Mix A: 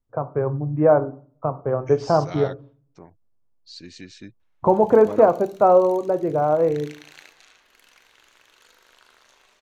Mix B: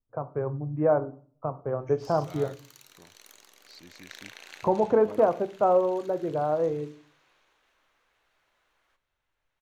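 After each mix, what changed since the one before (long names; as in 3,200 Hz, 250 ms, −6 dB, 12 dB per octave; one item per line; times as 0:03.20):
first voice −7.0 dB
second voice −10.0 dB
background: entry −2.65 s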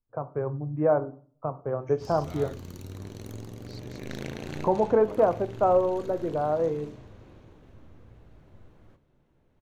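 background: remove high-pass filter 1,400 Hz 12 dB per octave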